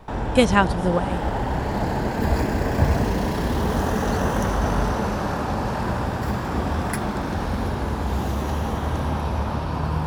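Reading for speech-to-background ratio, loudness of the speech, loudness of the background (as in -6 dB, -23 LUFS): 3.0 dB, -21.5 LUFS, -24.5 LUFS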